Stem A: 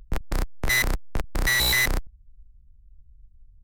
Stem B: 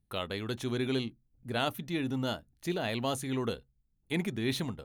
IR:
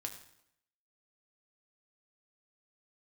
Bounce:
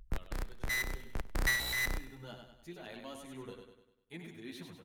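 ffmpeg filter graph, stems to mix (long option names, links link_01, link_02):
-filter_complex "[0:a]volume=-8.5dB,asplit=3[link_01][link_02][link_03];[link_02]volume=-23.5dB[link_04];[link_03]volume=-21.5dB[link_05];[1:a]equalizer=frequency=110:width=6.2:gain=-7,asplit=2[link_06][link_07];[link_07]adelay=8.9,afreqshift=0.68[link_08];[link_06][link_08]amix=inputs=2:normalize=1,volume=-14.5dB,afade=type=in:start_time=1.93:duration=0.28:silence=0.398107,asplit=4[link_09][link_10][link_11][link_12];[link_10]volume=-11dB[link_13];[link_11]volume=-4dB[link_14];[link_12]apad=whole_len=164705[link_15];[link_01][link_15]sidechaincompress=threshold=-59dB:ratio=8:attack=8.5:release=539[link_16];[2:a]atrim=start_sample=2205[link_17];[link_04][link_13]amix=inputs=2:normalize=0[link_18];[link_18][link_17]afir=irnorm=-1:irlink=0[link_19];[link_05][link_14]amix=inputs=2:normalize=0,aecho=0:1:99|198|297|396|495|594|693:1|0.47|0.221|0.104|0.0488|0.0229|0.0108[link_20];[link_16][link_09][link_19][link_20]amix=inputs=4:normalize=0,equalizer=frequency=1700:width_type=o:width=0.77:gain=2.5"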